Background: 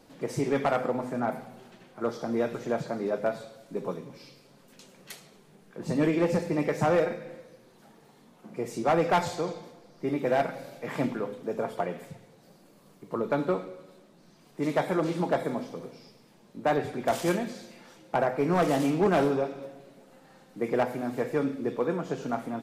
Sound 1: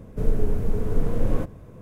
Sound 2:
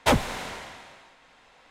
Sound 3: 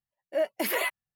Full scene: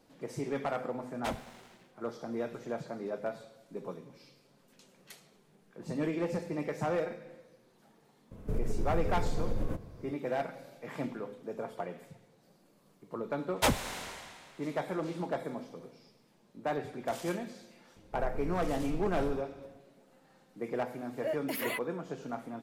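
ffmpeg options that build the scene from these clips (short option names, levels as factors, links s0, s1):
-filter_complex "[2:a]asplit=2[s0][s1];[1:a]asplit=2[s2][s3];[0:a]volume=0.398[s4];[s0]aeval=exprs='sgn(val(0))*max(abs(val(0))-0.0112,0)':c=same[s5];[s2]acompressor=threshold=0.1:ratio=6:attack=3.2:release=140:knee=1:detection=peak[s6];[s1]highshelf=f=5600:g=9[s7];[s5]atrim=end=1.7,asetpts=PTS-STARTPTS,volume=0.15,afade=t=in:d=0.004:c=hsin,afade=t=out:st=1.696:d=0.004:c=hsin,adelay=1180[s8];[s6]atrim=end=1.81,asetpts=PTS-STARTPTS,volume=0.531,afade=t=in:d=0.004:c=hsin,afade=t=out:st=1.806:d=0.004:c=hsin,adelay=8310[s9];[s7]atrim=end=1.7,asetpts=PTS-STARTPTS,volume=0.447,afade=t=in:d=0.004:c=hsin,afade=t=out:st=1.696:d=0.004:c=hsin,adelay=13560[s10];[s3]atrim=end=1.81,asetpts=PTS-STARTPTS,volume=0.141,afade=t=in:d=0.004:c=hsin,afade=t=out:st=1.806:d=0.004:c=hsin,adelay=792036S[s11];[3:a]atrim=end=1.15,asetpts=PTS-STARTPTS,volume=0.422,afade=t=in:d=0.004:c=hsin,afade=t=out:st=1.146:d=0.004:c=hsin,adelay=20890[s12];[s4][s8][s9][s10][s11][s12]amix=inputs=6:normalize=0"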